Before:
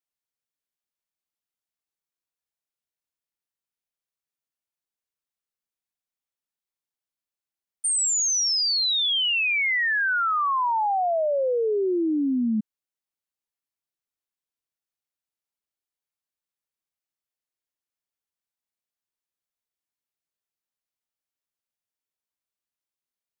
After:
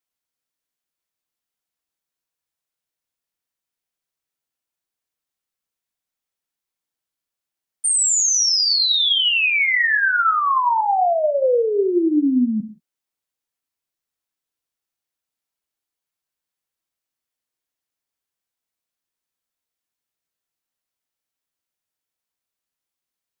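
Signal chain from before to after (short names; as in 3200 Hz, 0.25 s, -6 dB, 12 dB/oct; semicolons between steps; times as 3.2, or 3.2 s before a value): non-linear reverb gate 0.2 s falling, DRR 7 dB; gain +4.5 dB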